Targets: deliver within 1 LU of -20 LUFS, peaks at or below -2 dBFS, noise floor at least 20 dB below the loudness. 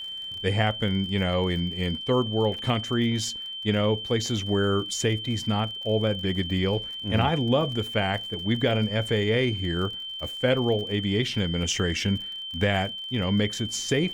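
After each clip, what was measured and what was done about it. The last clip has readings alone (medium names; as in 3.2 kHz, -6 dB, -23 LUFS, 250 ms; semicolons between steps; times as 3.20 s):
tick rate 46 per s; steady tone 3.1 kHz; tone level -33 dBFS; loudness -26.0 LUFS; peak level -9.5 dBFS; loudness target -20.0 LUFS
-> de-click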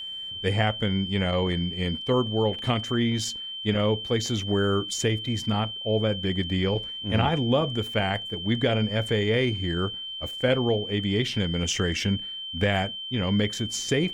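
tick rate 0.071 per s; steady tone 3.1 kHz; tone level -33 dBFS
-> band-stop 3.1 kHz, Q 30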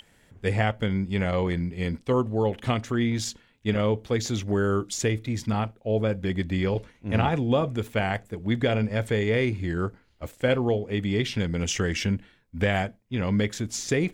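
steady tone not found; loudness -26.5 LUFS; peak level -10.0 dBFS; loudness target -20.0 LUFS
-> trim +6.5 dB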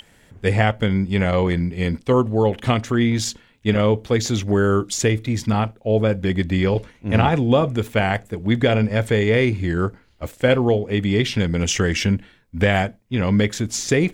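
loudness -20.0 LUFS; peak level -3.5 dBFS; noise floor -55 dBFS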